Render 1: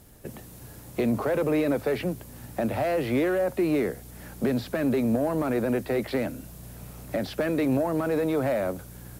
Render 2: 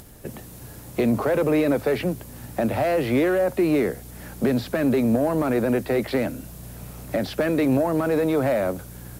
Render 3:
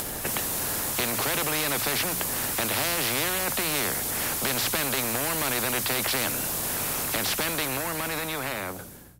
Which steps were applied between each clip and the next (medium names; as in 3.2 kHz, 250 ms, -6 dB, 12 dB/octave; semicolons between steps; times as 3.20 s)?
upward compressor, threshold -45 dBFS; trim +4 dB
fade out at the end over 2.25 s; hum notches 60/120/180 Hz; spectrum-flattening compressor 4:1